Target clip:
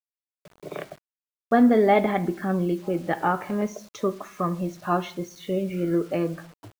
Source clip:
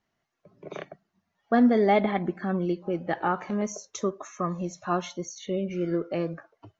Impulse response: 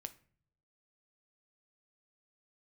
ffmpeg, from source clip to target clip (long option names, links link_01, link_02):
-filter_complex "[0:a]asplit=2[link_01][link_02];[1:a]atrim=start_sample=2205,lowpass=4300[link_03];[link_02][link_03]afir=irnorm=-1:irlink=0,volume=12.5dB[link_04];[link_01][link_04]amix=inputs=2:normalize=0,acrusher=bits=6:mix=0:aa=0.000001,volume=-8dB"